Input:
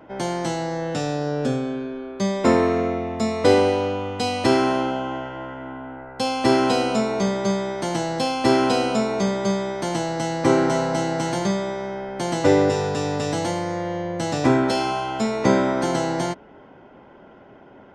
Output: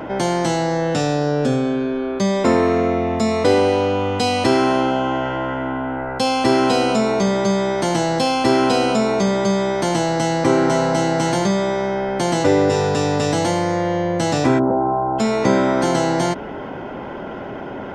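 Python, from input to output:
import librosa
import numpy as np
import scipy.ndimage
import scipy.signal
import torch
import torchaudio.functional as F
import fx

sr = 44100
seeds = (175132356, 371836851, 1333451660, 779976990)

y = fx.cheby2_lowpass(x, sr, hz=2700.0, order=4, stop_db=50, at=(14.58, 15.18), fade=0.02)
y = fx.env_flatten(y, sr, amount_pct=50)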